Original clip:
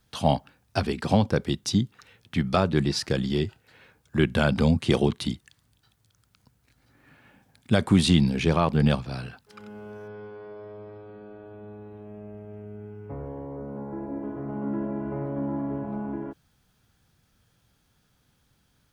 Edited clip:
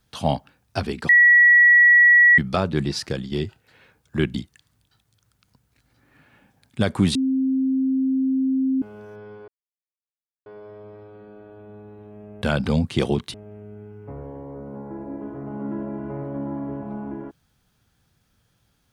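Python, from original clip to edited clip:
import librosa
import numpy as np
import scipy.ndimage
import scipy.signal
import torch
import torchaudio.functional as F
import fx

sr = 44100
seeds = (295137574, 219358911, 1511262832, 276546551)

y = fx.edit(x, sr, fx.bleep(start_s=1.09, length_s=1.29, hz=1930.0, db=-9.5),
    fx.fade_out_to(start_s=3.06, length_s=0.26, floor_db=-8.0),
    fx.move(start_s=4.34, length_s=0.92, to_s=12.36),
    fx.bleep(start_s=8.07, length_s=1.67, hz=264.0, db=-18.0),
    fx.insert_silence(at_s=10.4, length_s=0.98), tone=tone)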